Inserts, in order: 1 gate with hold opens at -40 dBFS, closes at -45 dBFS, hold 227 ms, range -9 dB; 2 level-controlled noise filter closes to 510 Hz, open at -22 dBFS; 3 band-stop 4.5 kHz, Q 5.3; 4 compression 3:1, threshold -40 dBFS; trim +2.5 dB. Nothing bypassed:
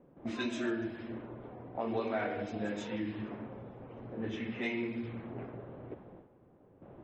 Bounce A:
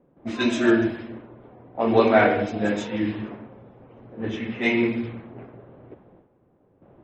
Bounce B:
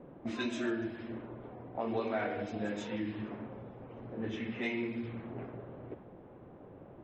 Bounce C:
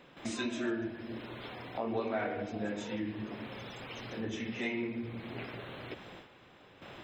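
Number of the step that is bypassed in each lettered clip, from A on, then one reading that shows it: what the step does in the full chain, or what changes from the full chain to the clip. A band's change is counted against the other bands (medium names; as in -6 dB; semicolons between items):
4, mean gain reduction 7.5 dB; 1, momentary loudness spread change +2 LU; 2, 4 kHz band +3.5 dB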